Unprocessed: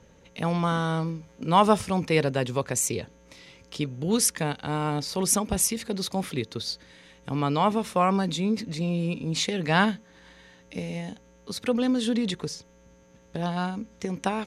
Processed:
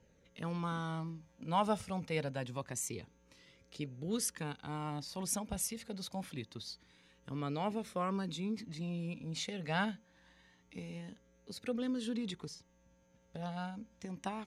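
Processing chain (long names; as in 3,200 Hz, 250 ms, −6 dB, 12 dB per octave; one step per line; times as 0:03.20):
flanger 0.26 Hz, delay 0.4 ms, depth 1.1 ms, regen −50%
level −9 dB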